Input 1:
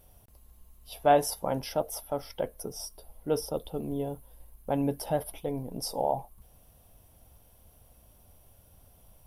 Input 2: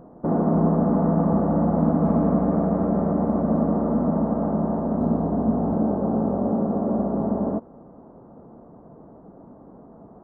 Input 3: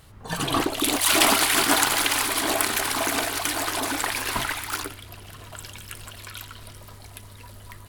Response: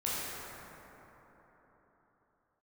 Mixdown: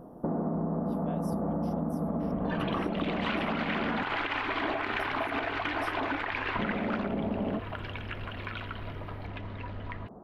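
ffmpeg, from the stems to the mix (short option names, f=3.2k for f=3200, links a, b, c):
-filter_complex "[0:a]volume=-17.5dB[a];[1:a]acompressor=threshold=-23dB:ratio=6,volume=-1.5dB,asplit=3[b][c][d];[b]atrim=end=4.03,asetpts=PTS-STARTPTS,afade=t=out:st=4.026:d=0.004:c=hsin[e];[c]atrim=start=4.03:end=6.59,asetpts=PTS-STARTPTS,volume=0[f];[d]atrim=start=6.59,asetpts=PTS-STARTPTS,afade=t=in:d=0.004:c=hsin[g];[e][f][g]concat=n=3:v=0:a=1[h];[2:a]lowpass=f=2.7k:w=0.5412,lowpass=f=2.7k:w=1.3066,agate=range=-33dB:threshold=-42dB:ratio=3:detection=peak,acompressor=mode=upward:threshold=-30dB:ratio=2.5,adelay=2200,volume=-0.5dB[i];[a][i]amix=inputs=2:normalize=0,alimiter=limit=-17dB:level=0:latency=1:release=96,volume=0dB[j];[h][j]amix=inputs=2:normalize=0,acompressor=threshold=-27dB:ratio=6"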